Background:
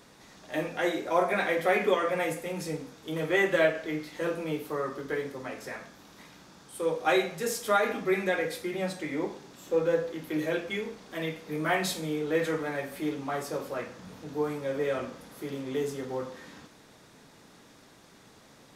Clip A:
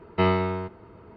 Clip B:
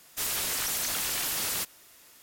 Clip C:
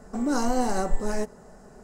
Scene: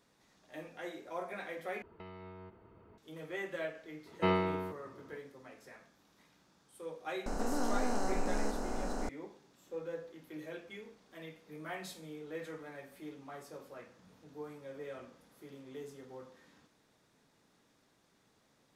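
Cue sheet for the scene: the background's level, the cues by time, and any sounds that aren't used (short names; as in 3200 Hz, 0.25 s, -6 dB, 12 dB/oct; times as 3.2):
background -15.5 dB
1.82 replace with A -11.5 dB + compressor 10:1, threshold -35 dBFS
4.04 add A -7.5 dB, fades 0.05 s + HPF 110 Hz 24 dB/oct
7.26 add C -15 dB + per-bin compression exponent 0.2
not used: B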